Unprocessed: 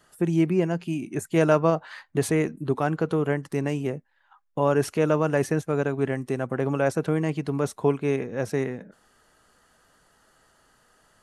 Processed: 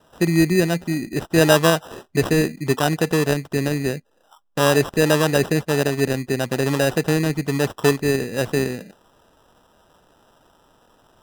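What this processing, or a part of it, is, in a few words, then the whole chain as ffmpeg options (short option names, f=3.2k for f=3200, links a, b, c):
crushed at another speed: -af "asetrate=22050,aresample=44100,acrusher=samples=40:mix=1:aa=0.000001,asetrate=88200,aresample=44100,volume=5dB"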